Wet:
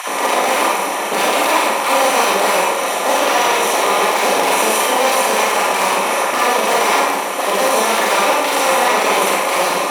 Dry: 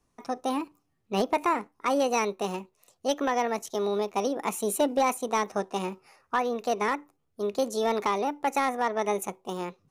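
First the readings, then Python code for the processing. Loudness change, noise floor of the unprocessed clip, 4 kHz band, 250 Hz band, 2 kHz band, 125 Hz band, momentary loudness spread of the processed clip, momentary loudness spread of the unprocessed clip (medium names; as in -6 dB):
+14.0 dB, -74 dBFS, +20.5 dB, +5.5 dB, +19.0 dB, no reading, 3 LU, 9 LU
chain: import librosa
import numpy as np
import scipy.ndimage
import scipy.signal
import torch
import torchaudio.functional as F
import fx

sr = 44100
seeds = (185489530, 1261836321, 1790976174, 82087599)

y = fx.bin_compress(x, sr, power=0.2)
y = fx.low_shelf(y, sr, hz=260.0, db=-10.0)
y = fx.fold_sine(y, sr, drive_db=11, ceiling_db=-2.5)
y = fx.filter_lfo_highpass(y, sr, shape='sine', hz=7.7, low_hz=210.0, high_hz=2700.0, q=1.2)
y = fx.rev_schroeder(y, sr, rt60_s=0.82, comb_ms=32, drr_db=-4.5)
y = F.gain(torch.from_numpy(y), -12.0).numpy()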